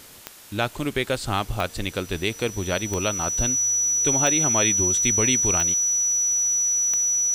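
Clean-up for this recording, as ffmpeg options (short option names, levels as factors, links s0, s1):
-af "adeclick=t=4,bandreject=f=5900:w=30,afftdn=nr=28:nf=-41"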